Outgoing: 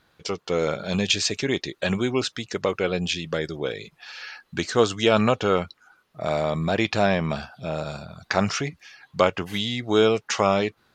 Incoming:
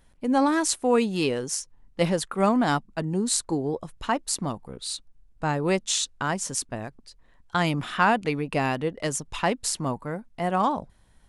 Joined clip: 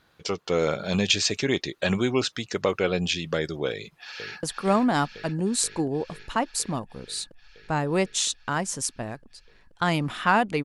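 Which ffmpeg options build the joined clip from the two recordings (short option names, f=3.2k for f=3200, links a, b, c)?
-filter_complex "[0:a]apad=whole_dur=10.64,atrim=end=10.64,atrim=end=4.432[a];[1:a]atrim=start=2.158:end=8.37[b];[a][b]acrossfade=d=0.004:c1=hsin:c2=hsin,asplit=2[c][d];[d]afade=t=in:st=3.71:d=0.01,afade=t=out:st=4.43:d=0.01,aecho=0:1:480|960|1440|1920|2400|2880|3360|3840|4320|4800|5280|5760:0.473151|0.378521|0.302817|0.242253|0.193803|0.155042|0.124034|0.099227|0.0793816|0.0635053|0.0508042|0.0406434[e];[c][e]amix=inputs=2:normalize=0"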